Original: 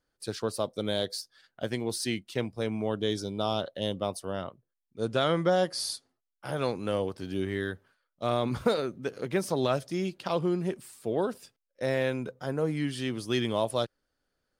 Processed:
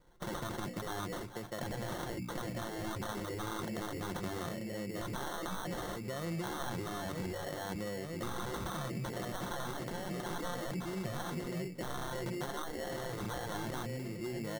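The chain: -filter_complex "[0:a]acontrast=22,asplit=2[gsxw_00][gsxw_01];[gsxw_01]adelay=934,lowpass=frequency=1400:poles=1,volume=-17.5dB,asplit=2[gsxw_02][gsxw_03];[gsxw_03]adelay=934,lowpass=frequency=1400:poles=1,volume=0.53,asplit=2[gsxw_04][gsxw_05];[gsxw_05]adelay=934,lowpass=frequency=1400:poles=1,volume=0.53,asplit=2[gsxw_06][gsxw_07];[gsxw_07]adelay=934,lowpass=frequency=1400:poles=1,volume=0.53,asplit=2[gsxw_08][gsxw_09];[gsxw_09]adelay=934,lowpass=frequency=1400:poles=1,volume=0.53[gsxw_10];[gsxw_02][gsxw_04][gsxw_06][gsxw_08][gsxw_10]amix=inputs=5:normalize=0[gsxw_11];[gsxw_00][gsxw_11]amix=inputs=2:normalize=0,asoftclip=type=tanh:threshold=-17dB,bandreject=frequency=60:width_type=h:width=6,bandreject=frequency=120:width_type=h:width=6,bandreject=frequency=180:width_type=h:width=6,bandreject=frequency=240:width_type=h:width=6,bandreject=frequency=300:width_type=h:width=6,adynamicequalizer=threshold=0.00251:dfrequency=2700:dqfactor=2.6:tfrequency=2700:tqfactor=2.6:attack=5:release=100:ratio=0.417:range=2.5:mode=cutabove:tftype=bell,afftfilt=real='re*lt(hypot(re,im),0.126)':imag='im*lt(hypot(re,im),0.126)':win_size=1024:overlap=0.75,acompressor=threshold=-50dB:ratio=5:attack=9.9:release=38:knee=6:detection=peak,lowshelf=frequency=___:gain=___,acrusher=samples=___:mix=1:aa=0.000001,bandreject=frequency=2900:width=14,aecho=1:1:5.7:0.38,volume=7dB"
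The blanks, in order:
260, 6.5, 18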